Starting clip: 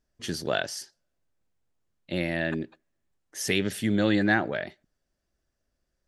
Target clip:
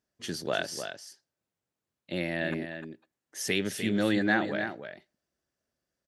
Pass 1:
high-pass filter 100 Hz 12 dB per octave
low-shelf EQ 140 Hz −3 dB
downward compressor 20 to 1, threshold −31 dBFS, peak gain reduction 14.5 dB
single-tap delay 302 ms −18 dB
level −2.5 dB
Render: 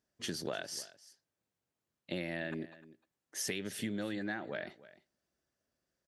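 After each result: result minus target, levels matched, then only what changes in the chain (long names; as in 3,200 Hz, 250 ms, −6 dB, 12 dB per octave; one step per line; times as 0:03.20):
downward compressor: peak gain reduction +14.5 dB; echo-to-direct −9.5 dB
remove: downward compressor 20 to 1, threshold −31 dBFS, peak gain reduction 14.5 dB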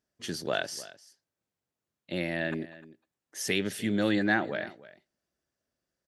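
echo-to-direct −9.5 dB
change: single-tap delay 302 ms −8.5 dB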